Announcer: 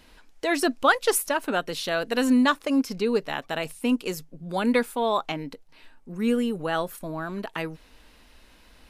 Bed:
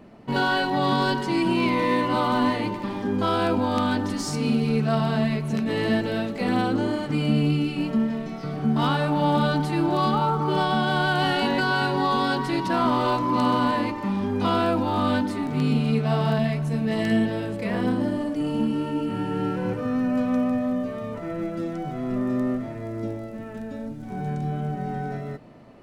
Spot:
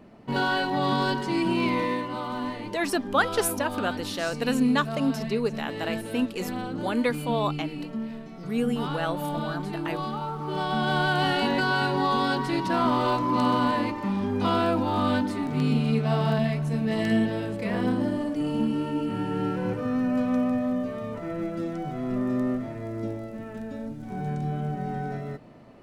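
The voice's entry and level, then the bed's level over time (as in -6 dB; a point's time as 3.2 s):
2.30 s, -3.0 dB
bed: 1.78 s -2.5 dB
2.11 s -9.5 dB
10.36 s -9.5 dB
10.9 s -1.5 dB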